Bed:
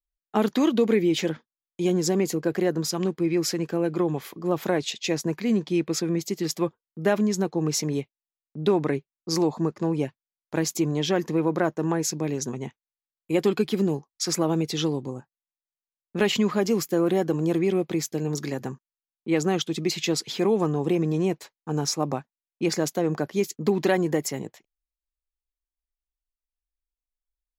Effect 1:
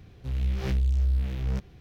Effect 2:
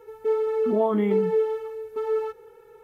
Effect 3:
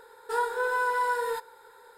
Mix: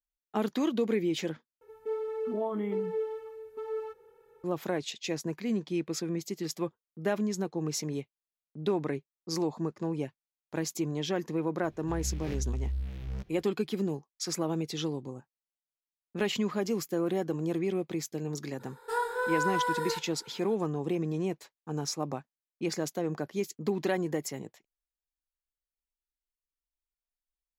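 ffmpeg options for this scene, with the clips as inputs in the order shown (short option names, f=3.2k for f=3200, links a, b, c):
-filter_complex "[0:a]volume=-7.5dB,asplit=2[a][b];[a]atrim=end=1.614[c];[2:a]atrim=end=2.83,asetpts=PTS-STARTPTS,volume=-10dB[d];[b]atrim=start=4.436[e];[1:a]atrim=end=1.8,asetpts=PTS-STARTPTS,volume=-8.5dB,afade=t=in:d=0.004:c=hsin,afade=t=out:st=1.796:d=0.004:c=hsin,adelay=11630[f];[3:a]atrim=end=1.97,asetpts=PTS-STARTPTS,volume=-3dB,afade=t=in:d=0.02,afade=t=out:st=1.95:d=0.02,adelay=18590[g];[c][d]acrossfade=d=0.004:c1=hsin:c2=hsin[h];[h][e]acrossfade=d=0.004:c1=hsin:c2=hsin[i];[i][f][g]amix=inputs=3:normalize=0"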